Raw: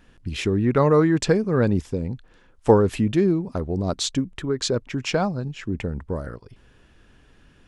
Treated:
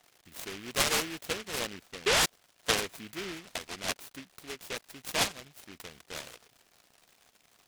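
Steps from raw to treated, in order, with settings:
parametric band 1,300 Hz +5.5 dB 1 octave
surface crackle 170 per second −29 dBFS
formant filter a
sound drawn into the spectrogram rise, 0:02.06–0:02.26, 370–1,100 Hz −24 dBFS
short delay modulated by noise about 2,200 Hz, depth 0.34 ms

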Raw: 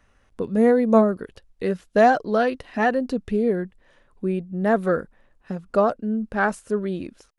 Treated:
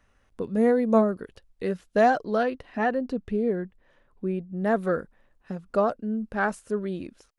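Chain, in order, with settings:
0:02.43–0:04.57: high-shelf EQ 4,100 Hz −9 dB
level −4 dB

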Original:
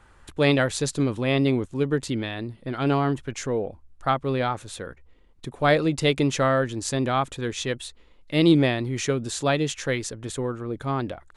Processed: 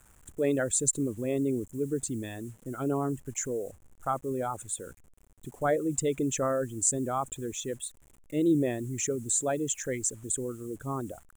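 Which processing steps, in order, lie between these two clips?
spectral envelope exaggerated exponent 2
bit reduction 9 bits
high shelf with overshoot 6,000 Hz +9.5 dB, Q 3
level −7 dB

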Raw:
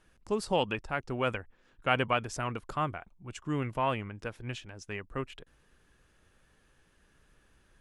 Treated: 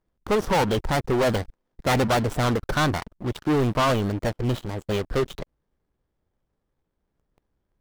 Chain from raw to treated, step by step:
running median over 25 samples
formants moved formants +4 semitones
leveller curve on the samples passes 5

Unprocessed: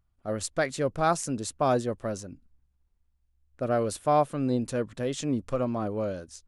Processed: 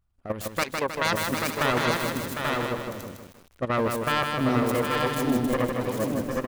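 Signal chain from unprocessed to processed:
phase distortion by the signal itself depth 0.7 ms
0:00.63–0:01.05: bass and treble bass −9 dB, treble −5 dB
in parallel at −1 dB: brickwall limiter −23.5 dBFS, peak gain reduction 11.5 dB
on the sum: output level in coarse steps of 12 dB
on a send: multi-tap delay 754/837 ms −7/−3.5 dB
on the sum: feedback echo at a low word length 157 ms, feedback 55%, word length 8 bits, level −4.5 dB

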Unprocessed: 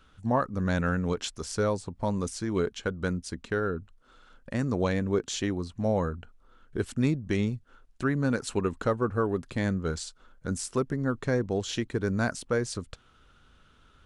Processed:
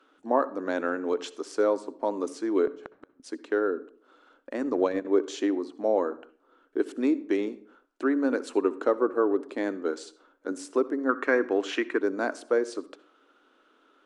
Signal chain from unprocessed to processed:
elliptic high-pass filter 290 Hz, stop band 50 dB
spectral tilt −3 dB per octave
0:02.66–0:03.20: gate with flip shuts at −25 dBFS, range −41 dB
convolution reverb, pre-delay 58 ms, DRR 17 dB
0:04.59–0:05.05: transient designer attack +2 dB, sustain −10 dB
0:11.09–0:12.01: flat-topped bell 1,700 Hz +11 dB
level +1.5 dB

